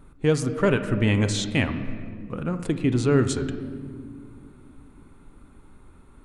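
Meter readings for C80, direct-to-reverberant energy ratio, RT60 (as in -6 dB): 11.5 dB, 8.5 dB, 2.2 s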